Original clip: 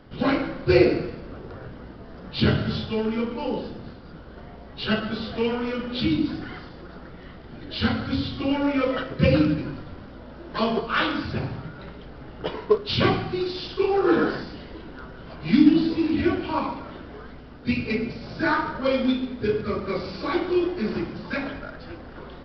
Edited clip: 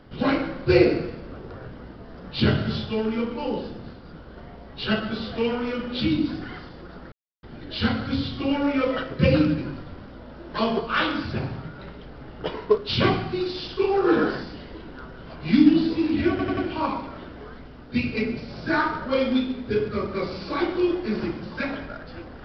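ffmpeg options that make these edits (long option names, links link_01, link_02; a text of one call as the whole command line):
ffmpeg -i in.wav -filter_complex "[0:a]asplit=6[link_01][link_02][link_03][link_04][link_05][link_06];[link_01]atrim=end=7.12,asetpts=PTS-STARTPTS,afade=type=out:start_time=7.116:duration=0.004:curve=hsin[link_07];[link_02]atrim=start=7.12:end=7.43,asetpts=PTS-STARTPTS,volume=0[link_08];[link_03]atrim=start=7.43:end=16.392,asetpts=PTS-STARTPTS,afade=type=in:duration=0.004:curve=hsin[link_09];[link_04]atrim=start=16.298:end=16.392[link_10];[link_05]atrim=start=16.298:end=16.392[link_11];[link_06]atrim=start=16.298[link_12];[link_07][link_08][link_09]concat=n=3:v=0:a=1[link_13];[link_13][link_10]acrossfade=duration=0.004:curve1=hsin:curve2=hsin[link_14];[link_14][link_11]acrossfade=duration=0.004:curve1=hsin:curve2=hsin[link_15];[link_15][link_12]acrossfade=duration=0.004:curve1=hsin:curve2=hsin" out.wav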